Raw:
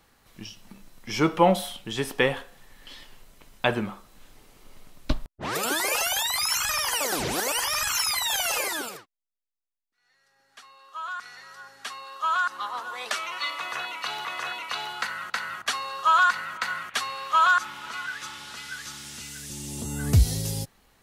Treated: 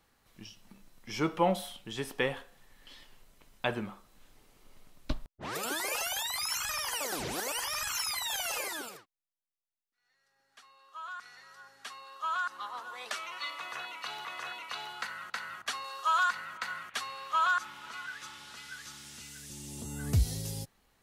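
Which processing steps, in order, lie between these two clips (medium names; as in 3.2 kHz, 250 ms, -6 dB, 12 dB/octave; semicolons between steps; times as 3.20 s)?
15.84–16.30 s: tone controls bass -10 dB, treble +5 dB; trim -8 dB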